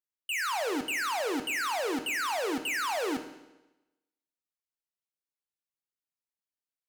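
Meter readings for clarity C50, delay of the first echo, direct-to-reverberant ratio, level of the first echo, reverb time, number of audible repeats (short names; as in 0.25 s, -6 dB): 10.0 dB, none, 7.0 dB, none, 1.0 s, none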